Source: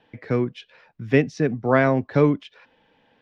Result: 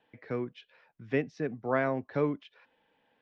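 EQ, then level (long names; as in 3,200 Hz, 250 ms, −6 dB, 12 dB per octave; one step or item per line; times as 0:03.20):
dynamic equaliser 4,000 Hz, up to −3 dB, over −38 dBFS, Q 0.74
high-frequency loss of the air 110 metres
low-shelf EQ 240 Hz −8.5 dB
−8.0 dB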